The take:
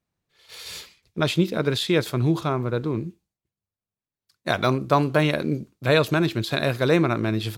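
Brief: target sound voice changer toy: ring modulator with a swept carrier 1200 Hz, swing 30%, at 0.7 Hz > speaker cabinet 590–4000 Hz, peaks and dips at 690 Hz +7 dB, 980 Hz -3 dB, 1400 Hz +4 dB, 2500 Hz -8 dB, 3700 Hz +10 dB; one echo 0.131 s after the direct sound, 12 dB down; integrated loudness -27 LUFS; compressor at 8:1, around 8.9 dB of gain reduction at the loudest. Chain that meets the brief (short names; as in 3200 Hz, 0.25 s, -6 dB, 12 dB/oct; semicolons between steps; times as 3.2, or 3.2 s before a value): compressor 8:1, threshold -23 dBFS; echo 0.131 s -12 dB; ring modulator with a swept carrier 1200 Hz, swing 30%, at 0.7 Hz; speaker cabinet 590–4000 Hz, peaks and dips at 690 Hz +7 dB, 980 Hz -3 dB, 1400 Hz +4 dB, 2500 Hz -8 dB, 3700 Hz +10 dB; gain +3 dB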